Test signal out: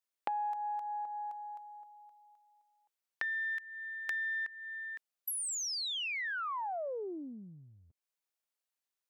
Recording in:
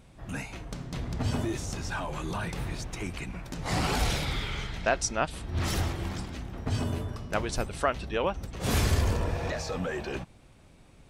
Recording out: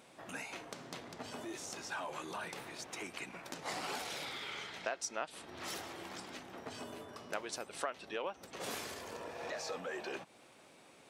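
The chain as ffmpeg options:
ffmpeg -i in.wav -af "acompressor=threshold=-39dB:ratio=4,aeval=exprs='0.0944*(cos(1*acos(clip(val(0)/0.0944,-1,1)))-cos(1*PI/2))+0.0106*(cos(3*acos(clip(val(0)/0.0944,-1,1)))-cos(3*PI/2))+0.00106*(cos(4*acos(clip(val(0)/0.0944,-1,1)))-cos(4*PI/2))+0.000596*(cos(5*acos(clip(val(0)/0.0944,-1,1)))-cos(5*PI/2))+0.000596*(cos(8*acos(clip(val(0)/0.0944,-1,1)))-cos(8*PI/2))':channel_layout=same,highpass=370,volume=5dB" out.wav

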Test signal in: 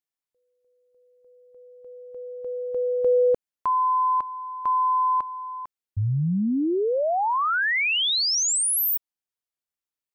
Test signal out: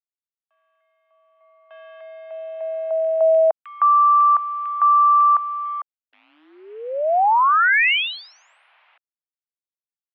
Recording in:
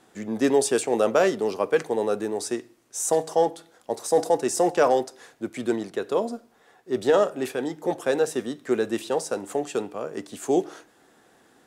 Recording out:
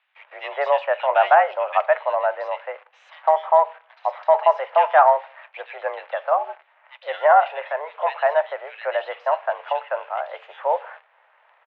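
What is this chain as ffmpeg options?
ffmpeg -i in.wav -filter_complex "[0:a]acrossover=split=2100[link_01][link_02];[link_01]adelay=160[link_03];[link_03][link_02]amix=inputs=2:normalize=0,acrusher=bits=9:dc=4:mix=0:aa=0.000001,highpass=frequency=520:width_type=q:width=0.5412,highpass=frequency=520:width_type=q:width=1.307,lowpass=frequency=2700:width_type=q:width=0.5176,lowpass=frequency=2700:width_type=q:width=0.7071,lowpass=frequency=2700:width_type=q:width=1.932,afreqshift=150,volume=8dB" out.wav

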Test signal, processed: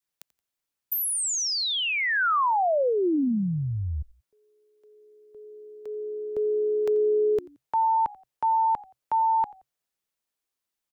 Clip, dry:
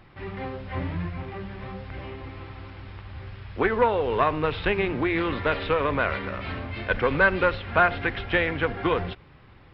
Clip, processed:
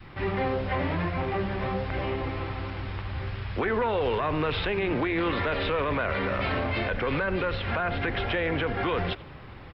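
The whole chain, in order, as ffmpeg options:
ffmpeg -i in.wav -filter_complex "[0:a]acrossover=split=280|1200[link_01][link_02][link_03];[link_01]acompressor=threshold=-36dB:ratio=4[link_04];[link_02]acompressor=threshold=-37dB:ratio=4[link_05];[link_03]acompressor=threshold=-34dB:ratio=4[link_06];[link_04][link_05][link_06]amix=inputs=3:normalize=0,adynamicequalizer=threshold=0.00631:dfrequency=590:dqfactor=1:tfrequency=590:tqfactor=1:attack=5:release=100:ratio=0.375:range=2.5:mode=boostabove:tftype=bell,alimiter=level_in=2dB:limit=-24dB:level=0:latency=1:release=14,volume=-2dB,asplit=3[link_07][link_08][link_09];[link_08]adelay=87,afreqshift=-68,volume=-22dB[link_10];[link_09]adelay=174,afreqshift=-136,volume=-31.6dB[link_11];[link_07][link_10][link_11]amix=inputs=3:normalize=0,volume=7dB" out.wav

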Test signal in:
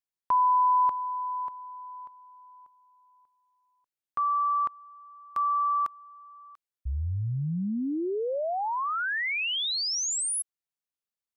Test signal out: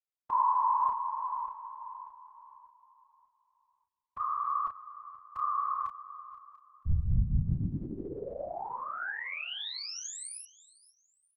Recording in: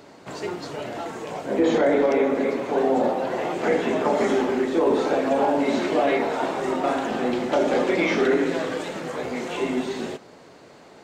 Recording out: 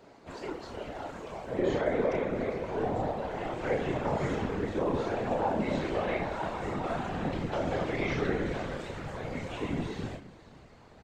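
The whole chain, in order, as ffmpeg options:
ffmpeg -i in.wav -filter_complex "[0:a]highshelf=frequency=5600:gain=-7.5,asplit=2[link_01][link_02];[link_02]adelay=31,volume=-4.5dB[link_03];[link_01][link_03]amix=inputs=2:normalize=0,asplit=2[link_04][link_05];[link_05]aecho=0:1:482|964:0.112|0.0314[link_06];[link_04][link_06]amix=inputs=2:normalize=0,afftfilt=real='hypot(re,im)*cos(2*PI*random(0))':imag='hypot(re,im)*sin(2*PI*random(1))':win_size=512:overlap=0.75,asubboost=boost=5.5:cutoff=120,volume=-3dB" out.wav

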